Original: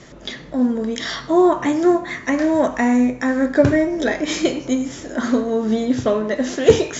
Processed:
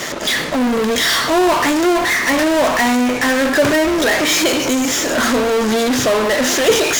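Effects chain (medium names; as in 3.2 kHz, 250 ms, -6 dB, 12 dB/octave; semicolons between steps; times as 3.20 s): high-pass 810 Hz 6 dB/octave; in parallel at -3.5 dB: fuzz box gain 45 dB, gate -52 dBFS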